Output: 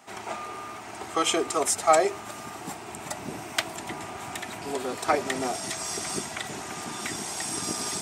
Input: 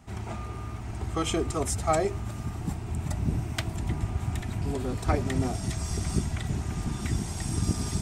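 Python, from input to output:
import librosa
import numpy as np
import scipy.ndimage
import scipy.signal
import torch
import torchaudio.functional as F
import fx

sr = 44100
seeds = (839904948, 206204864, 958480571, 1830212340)

y = scipy.signal.sosfilt(scipy.signal.butter(2, 480.0, 'highpass', fs=sr, output='sos'), x)
y = y * 10.0 ** (7.0 / 20.0)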